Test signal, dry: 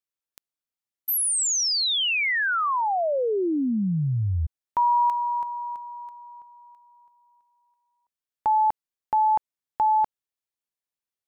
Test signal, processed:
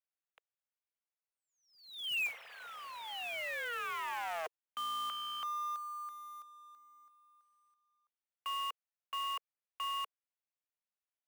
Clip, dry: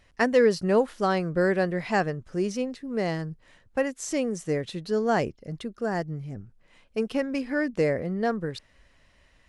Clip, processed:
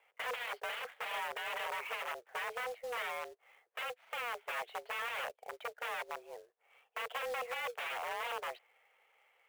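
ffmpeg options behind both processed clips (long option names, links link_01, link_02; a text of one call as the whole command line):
ffmpeg -i in.wav -filter_complex "[0:a]acrossover=split=2200[link_01][link_02];[link_01]aeval=exprs='(mod(21.1*val(0)+1,2)-1)/21.1':channel_layout=same[link_03];[link_02]acompressor=threshold=-35dB:ratio=5:attack=8.1:release=365:knee=1:detection=peak[link_04];[link_03][link_04]amix=inputs=2:normalize=0,highpass=frequency=230:width_type=q:width=0.5412,highpass=frequency=230:width_type=q:width=1.307,lowpass=frequency=2800:width_type=q:width=0.5176,lowpass=frequency=2800:width_type=q:width=0.7071,lowpass=frequency=2800:width_type=q:width=1.932,afreqshift=240,acrusher=bits=3:mode=log:mix=0:aa=0.000001,volume=-5.5dB" out.wav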